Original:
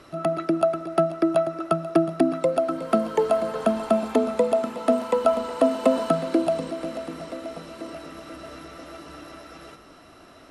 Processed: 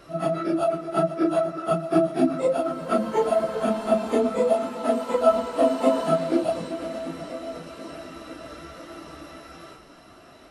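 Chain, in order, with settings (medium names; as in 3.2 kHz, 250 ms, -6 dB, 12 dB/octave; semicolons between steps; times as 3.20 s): phase randomisation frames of 100 ms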